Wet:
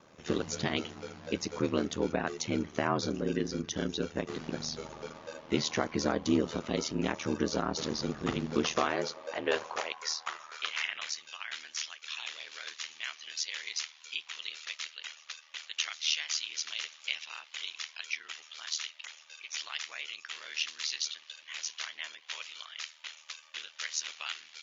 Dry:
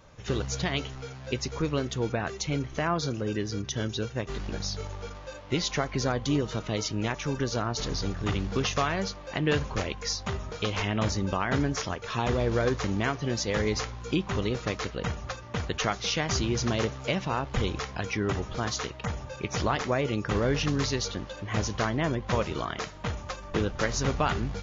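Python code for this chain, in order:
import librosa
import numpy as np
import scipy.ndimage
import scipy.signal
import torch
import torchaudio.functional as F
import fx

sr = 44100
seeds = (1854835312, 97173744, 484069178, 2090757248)

y = fx.filter_sweep_highpass(x, sr, from_hz=220.0, to_hz=2800.0, start_s=8.48, end_s=11.29, q=1.5)
y = y * np.sin(2.0 * np.pi * 39.0 * np.arange(len(y)) / sr)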